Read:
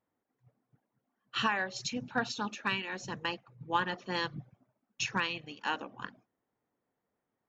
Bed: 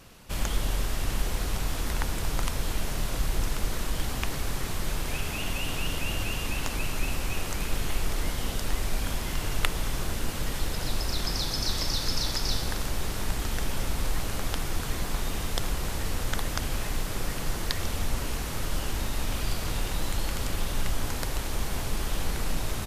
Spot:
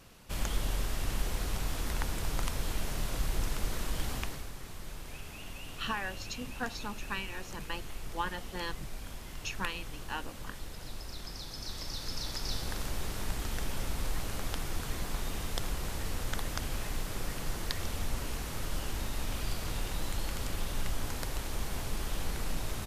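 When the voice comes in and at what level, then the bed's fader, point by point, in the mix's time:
4.45 s, -5.0 dB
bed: 4.16 s -4.5 dB
4.52 s -13.5 dB
11.44 s -13.5 dB
12.82 s -5.5 dB

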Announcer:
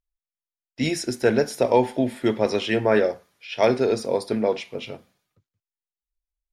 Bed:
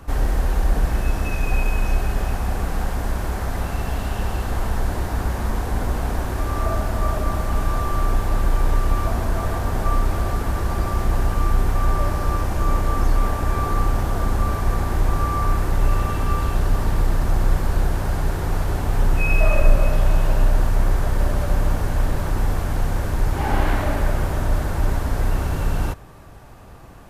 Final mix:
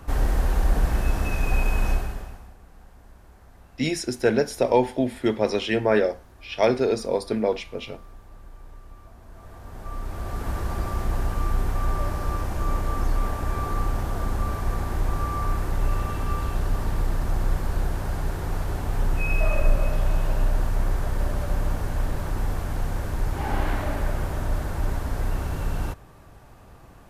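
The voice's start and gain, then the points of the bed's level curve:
3.00 s, -1.0 dB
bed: 1.91 s -2 dB
2.57 s -26 dB
9.17 s -26 dB
10.5 s -5.5 dB

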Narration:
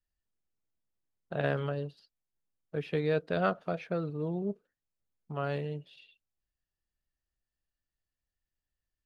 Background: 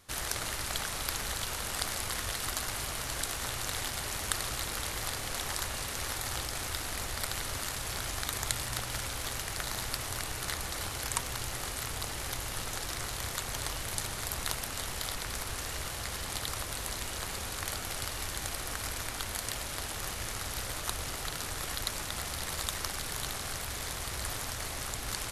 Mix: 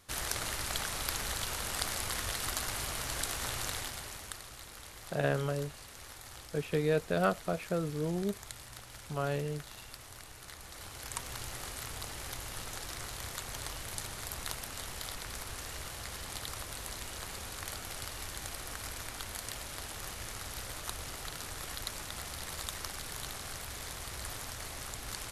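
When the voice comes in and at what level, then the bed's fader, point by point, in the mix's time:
3.80 s, 0.0 dB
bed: 3.64 s -1 dB
4.45 s -13.5 dB
10.52 s -13.5 dB
11.34 s -5 dB

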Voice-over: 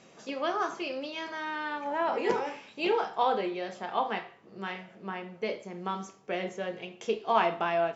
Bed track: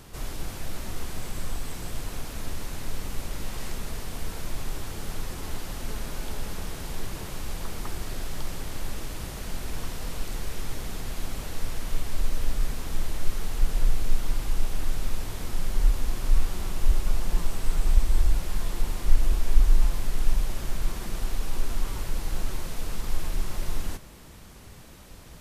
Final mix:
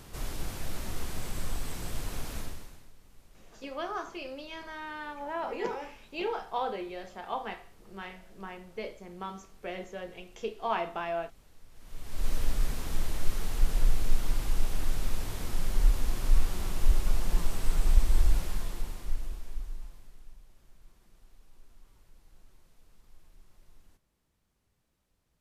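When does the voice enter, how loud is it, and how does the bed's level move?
3.35 s, -5.5 dB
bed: 2.38 s -2 dB
2.94 s -25 dB
11.69 s -25 dB
12.29 s -2 dB
18.39 s -2 dB
20.39 s -29.5 dB

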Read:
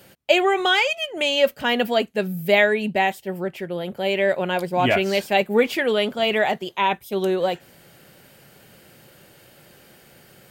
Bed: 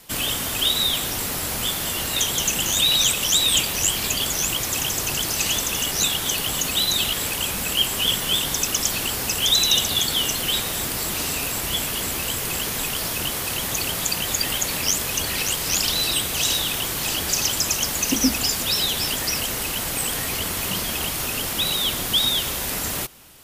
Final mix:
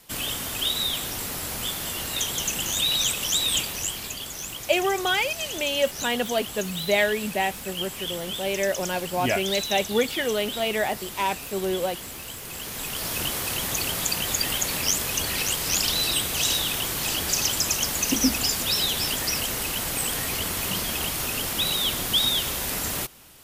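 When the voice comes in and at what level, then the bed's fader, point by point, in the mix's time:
4.40 s, -5.0 dB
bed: 3.55 s -5 dB
4.22 s -11.5 dB
12.44 s -11.5 dB
13.18 s -2 dB

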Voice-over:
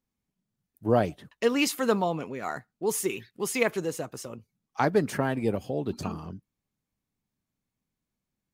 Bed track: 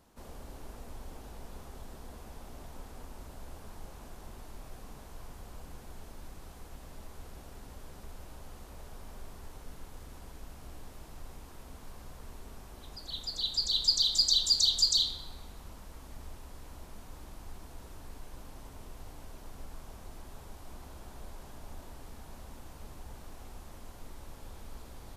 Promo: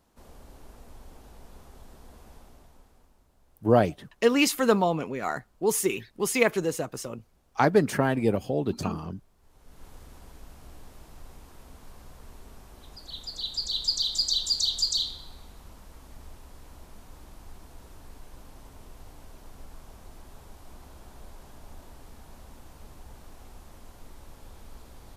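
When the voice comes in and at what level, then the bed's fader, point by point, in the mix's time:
2.80 s, +3.0 dB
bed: 2.35 s -3 dB
3.26 s -18 dB
9.36 s -18 dB
9.86 s -0.5 dB

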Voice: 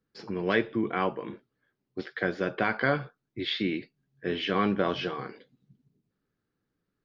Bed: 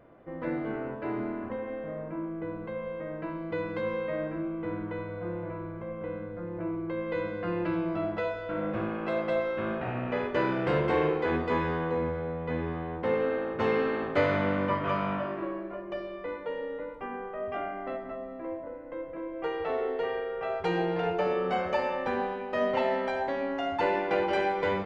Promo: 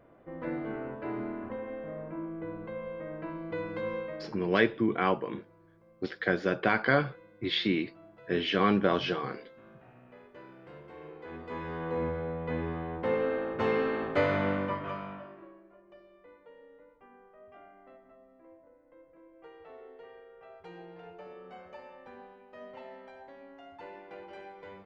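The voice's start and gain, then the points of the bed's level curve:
4.05 s, +1.0 dB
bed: 3.98 s -3 dB
4.64 s -23 dB
10.94 s -23 dB
12.03 s -1.5 dB
14.51 s -1.5 dB
15.6 s -19.5 dB

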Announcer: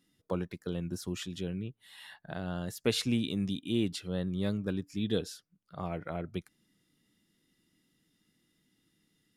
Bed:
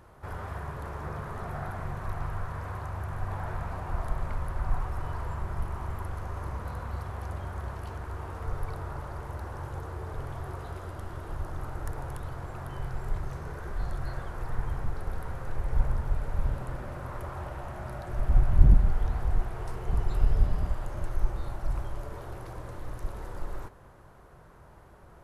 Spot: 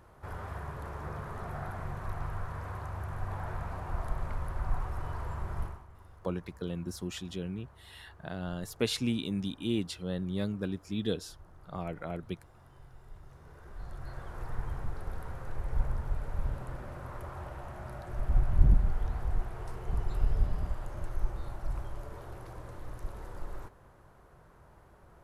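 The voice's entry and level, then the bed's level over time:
5.95 s, -1.0 dB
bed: 5.65 s -3 dB
5.86 s -19 dB
13.12 s -19 dB
14.38 s -4.5 dB

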